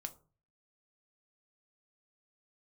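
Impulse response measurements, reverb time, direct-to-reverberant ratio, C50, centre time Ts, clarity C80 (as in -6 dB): 0.40 s, 7.0 dB, 17.0 dB, 5 ms, 22.0 dB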